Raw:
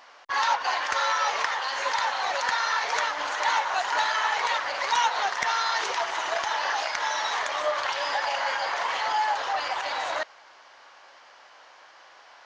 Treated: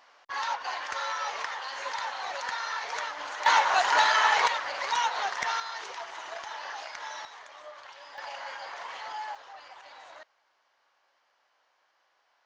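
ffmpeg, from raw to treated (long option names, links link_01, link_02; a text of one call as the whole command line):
ffmpeg -i in.wav -af "asetnsamples=nb_out_samples=441:pad=0,asendcmd='3.46 volume volume 3dB;4.48 volume volume -4dB;5.6 volume volume -11.5dB;7.25 volume volume -19.5dB;8.18 volume volume -12dB;9.35 volume volume -19.5dB',volume=-7.5dB" out.wav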